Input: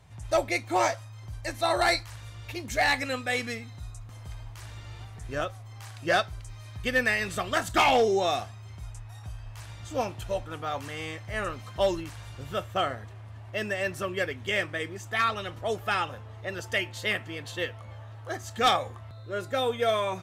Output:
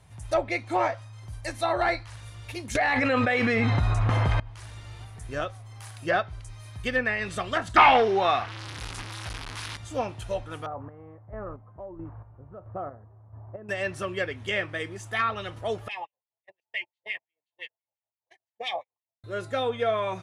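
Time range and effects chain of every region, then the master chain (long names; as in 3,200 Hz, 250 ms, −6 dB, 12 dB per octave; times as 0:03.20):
0:02.75–0:04.40: low-shelf EQ 130 Hz −10.5 dB + envelope flattener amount 100%
0:07.76–0:09.77: linear delta modulator 64 kbit/s, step −34.5 dBFS + flat-topped bell 2,200 Hz +9.5 dB 3 octaves
0:10.66–0:13.69: low-pass filter 1,100 Hz 24 dB per octave + downward compressor 2.5 to 1, threshold −32 dBFS + square-wave tremolo 1.5 Hz, depth 60%, duty 35%
0:15.88–0:19.24: noise gate −31 dBFS, range −41 dB + Chebyshev band-stop filter 970–2,000 Hz + LFO wah 5.8 Hz 630–2,600 Hz, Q 2.5
whole clip: treble cut that deepens with the level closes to 2,200 Hz, closed at −21 dBFS; parametric band 9,900 Hz +12.5 dB 0.21 octaves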